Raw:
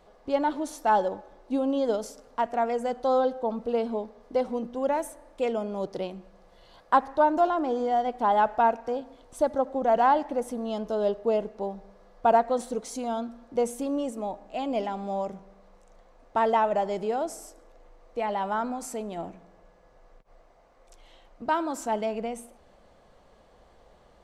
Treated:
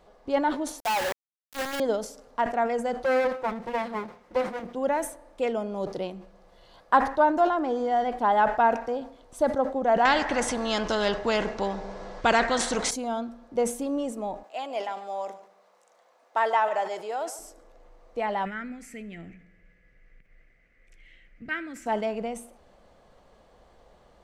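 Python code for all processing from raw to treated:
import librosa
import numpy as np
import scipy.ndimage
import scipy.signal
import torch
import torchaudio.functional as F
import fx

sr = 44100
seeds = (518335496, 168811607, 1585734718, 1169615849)

y = fx.chain(x, sr, fx.level_steps(step_db=11),
    fx.highpass(hz=640.0, slope=12),
    fx.quant_companded(bits=2), at=(0.8, 1.8))
y = fx.chain(y, sr, fx.lower_of_two(delay_ms=5.6),
    fx.highpass(hz=83.0, slope=6),
    fx.peak_eq(hz=2100.0, db=5.5, octaves=0.29), at=(3.04, 4.75))
y = fx.chain(y, sr, fx.lowpass(hz=8000.0, slope=24),
    fx.notch(hz=1200.0, q=18.0),
    fx.spectral_comp(ratio=2.0), at=(10.05, 12.91))
y = fx.chain(y, sr, fx.highpass(hz=590.0, slope=12),
    fx.high_shelf(hz=8200.0, db=4.5),
    fx.echo_single(ms=144, db=-15.5), at=(14.43, 17.39))
y = fx.chain(y, sr, fx.curve_eq(hz=(170.0, 300.0, 480.0, 950.0, 2000.0, 3800.0), db=(0, -6, -11, -25, 11, -10)),
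    fx.echo_single(ms=81, db=-21.5), at=(18.45, 21.86))
y = fx.dynamic_eq(y, sr, hz=1800.0, q=2.1, threshold_db=-44.0, ratio=4.0, max_db=6)
y = fx.sustainer(y, sr, db_per_s=130.0)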